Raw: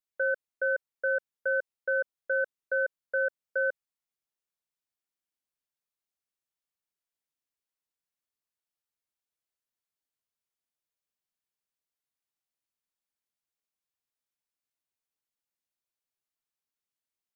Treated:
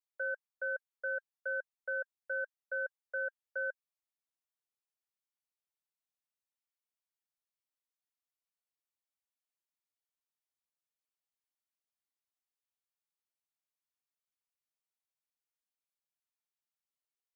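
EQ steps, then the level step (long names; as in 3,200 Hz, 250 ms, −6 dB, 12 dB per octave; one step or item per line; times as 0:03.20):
four-pole ladder high-pass 500 Hz, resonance 20%
notch filter 1,600 Hz, Q 26
−2.0 dB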